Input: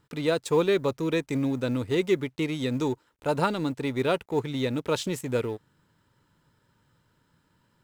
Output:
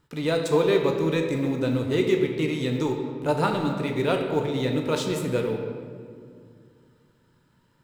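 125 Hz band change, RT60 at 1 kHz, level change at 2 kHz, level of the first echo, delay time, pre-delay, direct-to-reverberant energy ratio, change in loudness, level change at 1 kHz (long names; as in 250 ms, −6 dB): +3.5 dB, 2.0 s, +2.0 dB, no echo audible, no echo audible, 13 ms, 2.0 dB, +2.5 dB, +2.5 dB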